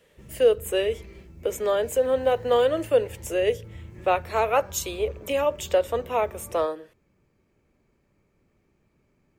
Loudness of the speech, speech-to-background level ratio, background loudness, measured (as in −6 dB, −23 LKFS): −25.0 LKFS, 19.5 dB, −44.5 LKFS